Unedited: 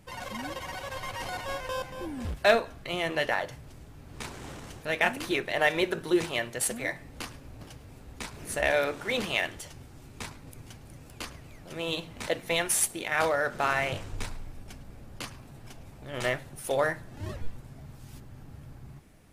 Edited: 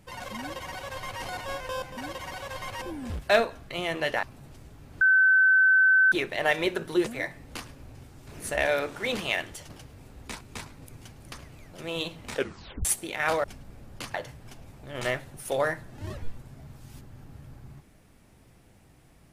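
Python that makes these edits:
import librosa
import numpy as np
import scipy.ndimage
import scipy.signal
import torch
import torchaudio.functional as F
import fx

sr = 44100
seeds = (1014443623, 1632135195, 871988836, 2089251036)

y = fx.edit(x, sr, fx.duplicate(start_s=0.38, length_s=0.85, to_s=1.97),
    fx.swap(start_s=3.38, length_s=0.26, other_s=15.34, other_length_s=0.25),
    fx.bleep(start_s=4.17, length_s=1.11, hz=1530.0, db=-16.0),
    fx.cut(start_s=6.22, length_s=0.49),
    fx.swap(start_s=7.6, length_s=0.72, other_s=9.74, other_length_s=0.32),
    fx.cut(start_s=10.97, length_s=0.27),
    fx.tape_stop(start_s=12.23, length_s=0.54),
    fx.cut(start_s=13.36, length_s=1.28), tone=tone)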